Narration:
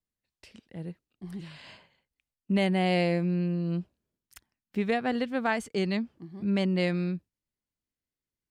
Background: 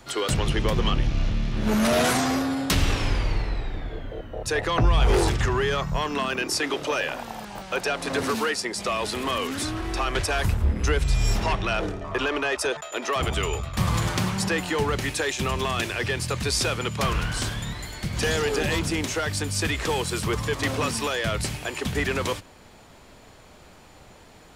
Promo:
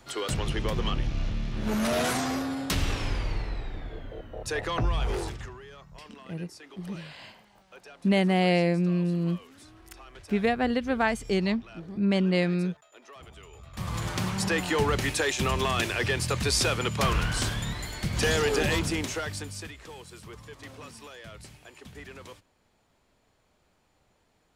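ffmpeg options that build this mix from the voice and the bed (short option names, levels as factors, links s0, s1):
-filter_complex "[0:a]adelay=5550,volume=1.33[s0];[1:a]volume=7.08,afade=t=out:st=4.71:d=0.88:silence=0.133352,afade=t=in:st=13.53:d=1.16:silence=0.0749894,afade=t=out:st=18.64:d=1.1:silence=0.11885[s1];[s0][s1]amix=inputs=2:normalize=0"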